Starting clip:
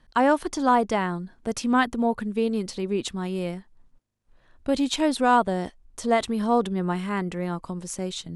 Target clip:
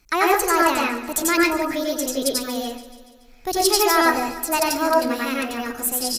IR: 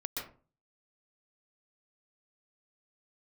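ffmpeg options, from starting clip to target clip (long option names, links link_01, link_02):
-filter_complex "[0:a]crystalizer=i=5:c=0,aecho=1:1:193|386|579|772|965|1158:0.178|0.107|0.064|0.0384|0.023|0.0138[link_01];[1:a]atrim=start_sample=2205[link_02];[link_01][link_02]afir=irnorm=-1:irlink=0,asetrate=59535,aresample=44100"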